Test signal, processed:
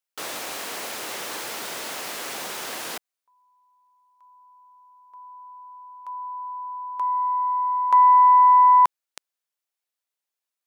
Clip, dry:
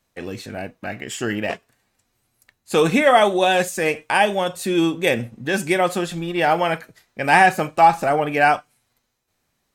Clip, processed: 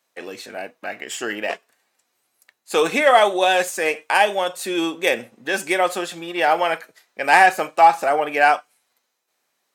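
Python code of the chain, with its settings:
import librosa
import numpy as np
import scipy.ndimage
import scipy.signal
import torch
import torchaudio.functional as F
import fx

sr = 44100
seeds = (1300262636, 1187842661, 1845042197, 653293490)

y = fx.tracing_dist(x, sr, depth_ms=0.023)
y = scipy.signal.sosfilt(scipy.signal.butter(2, 420.0, 'highpass', fs=sr, output='sos'), y)
y = F.gain(torch.from_numpy(y), 1.0).numpy()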